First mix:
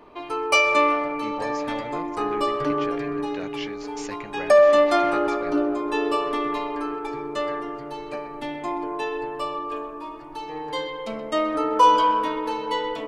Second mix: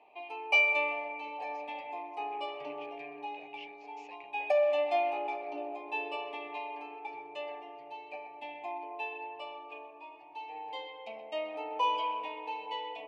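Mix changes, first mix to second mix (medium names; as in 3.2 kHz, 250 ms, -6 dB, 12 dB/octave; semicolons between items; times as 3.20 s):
speech -5.5 dB; master: add two resonant band-passes 1.4 kHz, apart 1.7 oct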